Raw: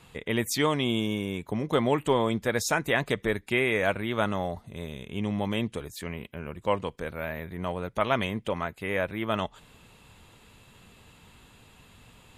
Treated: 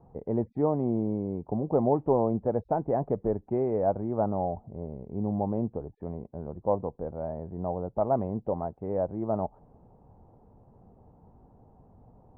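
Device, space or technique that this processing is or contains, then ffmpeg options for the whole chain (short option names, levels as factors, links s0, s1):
under water: -af "lowpass=f=760:w=0.5412,lowpass=f=760:w=1.3066,equalizer=f=790:t=o:w=0.49:g=7.5"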